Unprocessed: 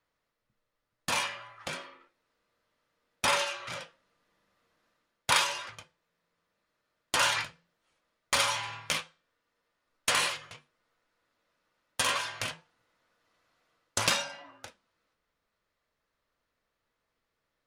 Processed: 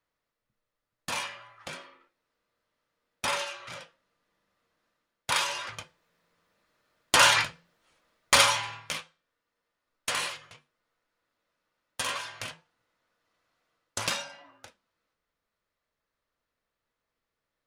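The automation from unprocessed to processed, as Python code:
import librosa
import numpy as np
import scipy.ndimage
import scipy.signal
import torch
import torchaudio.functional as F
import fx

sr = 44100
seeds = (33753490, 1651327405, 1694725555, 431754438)

y = fx.gain(x, sr, db=fx.line((5.32, -3.0), (5.78, 7.0), (8.41, 7.0), (8.88, -3.5)))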